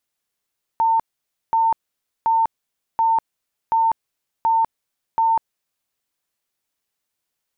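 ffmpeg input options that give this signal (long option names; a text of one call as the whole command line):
ffmpeg -f lavfi -i "aevalsrc='0.2*sin(2*PI*904*mod(t,0.73))*lt(mod(t,0.73),178/904)':duration=5.11:sample_rate=44100" out.wav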